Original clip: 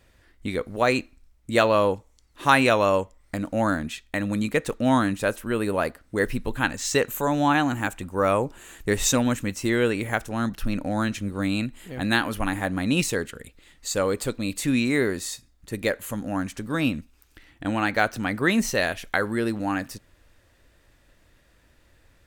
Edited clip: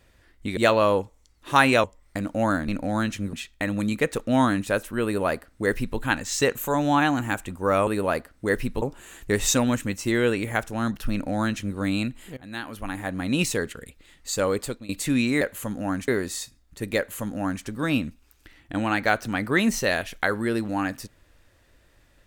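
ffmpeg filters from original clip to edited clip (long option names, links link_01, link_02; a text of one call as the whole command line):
ffmpeg -i in.wav -filter_complex "[0:a]asplit=11[link_01][link_02][link_03][link_04][link_05][link_06][link_07][link_08][link_09][link_10][link_11];[link_01]atrim=end=0.572[link_12];[link_02]atrim=start=1.498:end=2.772[link_13];[link_03]atrim=start=3.018:end=3.862[link_14];[link_04]atrim=start=10.698:end=11.352[link_15];[link_05]atrim=start=3.858:end=8.402[link_16];[link_06]atrim=start=5.568:end=6.522[link_17];[link_07]atrim=start=8.398:end=11.95,asetpts=PTS-STARTPTS,afade=type=out:start_time=3.548:duration=0.004:curve=hsin:silence=0.0841395[link_18];[link_08]atrim=start=11.95:end=14.47,asetpts=PTS-STARTPTS,afade=type=in:duration=1.13:silence=0.0841395,afade=type=out:start_time=2.21:duration=0.31:silence=0.112202[link_19];[link_09]atrim=start=14.47:end=14.992,asetpts=PTS-STARTPTS,afade=type=in:duration=0.004:curve=hsin:silence=0.112202[link_20];[link_10]atrim=start=15.878:end=16.552[link_21];[link_11]atrim=start=14.988[link_22];[link_12][link_13]acrossfade=duration=0.004:curve1=hsin:curve2=hsin[link_23];[link_23][link_14]acrossfade=duration=0.004:curve1=hsin:curve2=hsin[link_24];[link_24][link_15]acrossfade=duration=0.004:curve1=hsin:curve2=hsin[link_25];[link_25][link_16]acrossfade=duration=0.004:curve1=hsin:curve2=hsin[link_26];[link_26][link_17]acrossfade=duration=0.004:curve1=hsin:curve2=hsin[link_27];[link_18][link_19][link_20]concat=n=3:v=0:a=1[link_28];[link_27][link_28]acrossfade=duration=0.004:curve1=hsin:curve2=hsin[link_29];[link_29][link_21]acrossfade=duration=0.004:curve1=hsin:curve2=hsin[link_30];[link_30][link_22]acrossfade=duration=0.004:curve1=hsin:curve2=hsin" out.wav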